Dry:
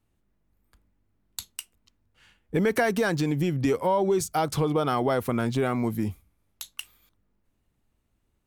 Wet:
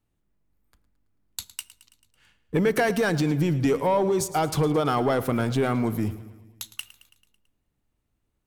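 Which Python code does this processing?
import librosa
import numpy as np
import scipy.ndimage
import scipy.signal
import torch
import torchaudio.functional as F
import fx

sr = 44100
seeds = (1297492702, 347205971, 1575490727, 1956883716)

y = fx.leveller(x, sr, passes=1)
y = fx.echo_feedback(y, sr, ms=110, feedback_pct=59, wet_db=-17)
y = fx.room_shoebox(y, sr, seeds[0], volume_m3=2700.0, walls='furnished', distance_m=0.36)
y = y * 10.0 ** (-1.5 / 20.0)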